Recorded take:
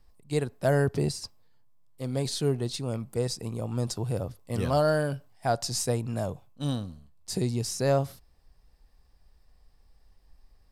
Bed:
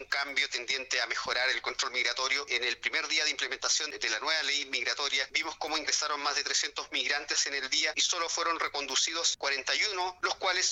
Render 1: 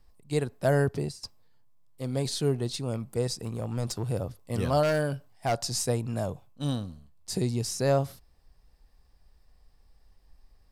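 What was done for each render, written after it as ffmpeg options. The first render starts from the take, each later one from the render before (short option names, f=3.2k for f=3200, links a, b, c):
-filter_complex "[0:a]asettb=1/sr,asplit=3[a][b][c];[a]atrim=end=3.394[d];[b]atrim=start=3.39:end=4.09,asetpts=PTS-STARTPTS,afade=t=in:d=0.004:c=qsin,afade=t=out:st=0.696:d=0.004:c=qsin,aeval=exprs='clip(val(0),-1,0.0299)':c=same[e];[c]atrim=start=4.086[f];[d][e]acrossfade=d=0.004:c1=hsin:c2=qsin[g];[g][f]acrossfade=d=0.004:c1=qsin:c2=hsin,asettb=1/sr,asplit=3[h][i][j];[h]atrim=end=4.834[k];[i]atrim=start=4.83:end=5.63,asetpts=PTS-STARTPTS,afade=t=in:d=0.004:c=qsin,afade=t=out:st=0.796:d=0.004:c=qsin,aeval=exprs='0.106*(abs(mod(val(0)/0.106+3,4)-2)-1)':c=same[l];[j]atrim=start=5.626[m];[k][l]acrossfade=d=0.004:c1=hsin:c2=qsin[n];[n][m]acrossfade=d=0.004:c1=qsin:c2=hsin,asplit=2[o][p];[o]atrim=end=1.23,asetpts=PTS-STARTPTS,afade=t=out:st=0.82:d=0.41:silence=0.223872[q];[p]atrim=start=1.23,asetpts=PTS-STARTPTS,afade=t=in:d=0.004:c=hsin:silence=0.223872[r];[q][r]concat=n=2:v=0:a=1"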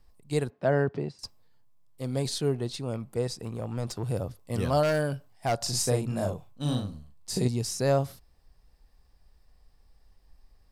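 -filter_complex "[0:a]asettb=1/sr,asplit=3[a][b][c];[a]atrim=end=0.504[d];[b]atrim=start=0.5:end=1.19,asetpts=PTS-STARTPTS,afade=t=in:d=0.004:c=qsin,afade=t=out:st=0.686:d=0.004:c=qsin,highpass=140,lowpass=2.8k[e];[c]atrim=start=1.186[f];[d][e]acrossfade=d=0.004:c1=hsin:c2=qsin[g];[g][f]acrossfade=d=0.004:c1=qsin:c2=hsin,asettb=1/sr,asplit=3[h][i][j];[h]atrim=end=2.384[k];[i]atrim=start=2.38:end=4.03,asetpts=PTS-STARTPTS,afade=t=in:d=0.004:c=qsin,afade=t=out:st=1.646:d=0.004:c=qsin,bass=f=250:g=-2,treble=f=4k:g=-5[l];[j]atrim=start=4.026[m];[k][l]acrossfade=d=0.004:c1=hsin:c2=qsin[n];[n][m]acrossfade=d=0.004:c1=qsin:c2=hsin,asettb=1/sr,asplit=3[o][p][q];[o]atrim=end=5.574[r];[p]atrim=start=5.57:end=7.48,asetpts=PTS-STARTPTS,afade=t=in:d=0.004:c=qsin,afade=t=out:st=1.906:d=0.004:c=qsin,asplit=2[s][t];[t]adelay=40,volume=-3dB[u];[s][u]amix=inputs=2:normalize=0,atrim=end_sample=84231[v];[q]atrim=start=7.476[w];[r][v]acrossfade=d=0.004:c1=hsin:c2=qsin[x];[x][w]acrossfade=d=0.004:c1=qsin:c2=hsin"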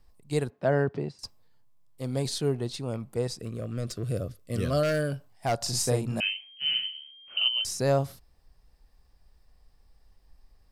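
-filter_complex "[0:a]asettb=1/sr,asplit=3[a][b][c];[a]atrim=end=3.394[d];[b]atrim=start=3.39:end=5.12,asetpts=PTS-STARTPTS,afade=t=in:d=0.004:c=qsin,afade=t=out:st=1.726:d=0.004:c=qsin,asuperstop=centerf=870:order=4:qfactor=1.8[e];[c]atrim=start=5.116[f];[d][e]acrossfade=d=0.004:c1=hsin:c2=qsin[g];[g][f]acrossfade=d=0.004:c1=qsin:c2=hsin,asettb=1/sr,asplit=3[h][i][j];[h]atrim=end=6.204[k];[i]atrim=start=6.2:end=7.65,asetpts=PTS-STARTPTS,afade=t=in:d=0.004:c=qsin,afade=t=out:st=1.446:d=0.004:c=qsin,lowpass=f=2.7k:t=q:w=0.5098,lowpass=f=2.7k:t=q:w=0.6013,lowpass=f=2.7k:t=q:w=0.9,lowpass=f=2.7k:t=q:w=2.563,afreqshift=-3200[l];[j]atrim=start=7.646[m];[k][l]acrossfade=d=0.004:c1=hsin:c2=qsin[n];[n][m]acrossfade=d=0.004:c1=qsin:c2=hsin"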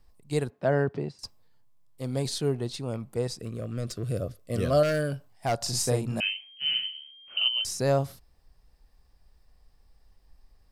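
-filter_complex "[0:a]asettb=1/sr,asplit=3[a][b][c];[a]atrim=end=4.224[d];[b]atrim=start=4.22:end=4.83,asetpts=PTS-STARTPTS,afade=t=in:d=0.004:c=qsin,afade=t=out:st=0.606:d=0.004:c=qsin,equalizer=f=670:w=1.2:g=6[e];[c]atrim=start=4.826[f];[d][e]acrossfade=d=0.004:c1=hsin:c2=qsin[g];[g][f]acrossfade=d=0.004:c1=qsin:c2=hsin"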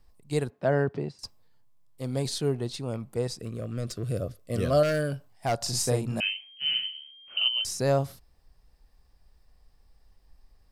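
-af anull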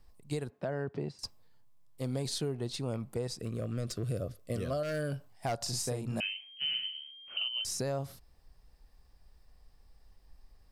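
-af "alimiter=limit=-21.5dB:level=0:latency=1:release=332,acompressor=threshold=-32dB:ratio=2.5"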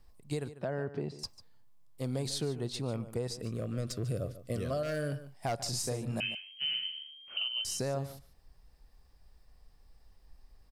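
-filter_complex "[0:a]asplit=2[a][b];[b]adelay=145.8,volume=-14dB,highshelf=f=4k:g=-3.28[c];[a][c]amix=inputs=2:normalize=0"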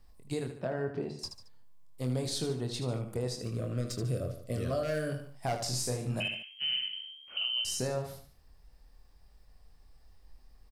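-af "aecho=1:1:24|78:0.473|0.376"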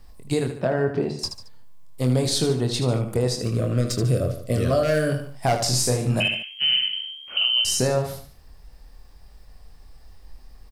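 -af "volume=11.5dB"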